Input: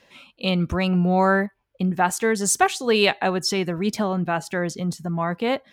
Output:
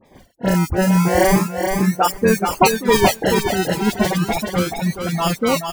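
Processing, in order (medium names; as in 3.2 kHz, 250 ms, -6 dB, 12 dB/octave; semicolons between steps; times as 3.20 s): treble shelf 2.2 kHz -9 dB; decimation with a swept rate 30×, swing 60% 0.35 Hz; feedback delay 428 ms, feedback 28%, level -4.5 dB; reverb removal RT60 1.6 s; 0.45–2.58 s: peaking EQ 3.6 kHz -14.5 dB 0.49 oct; phase dispersion highs, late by 51 ms, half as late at 2.8 kHz; trim +6.5 dB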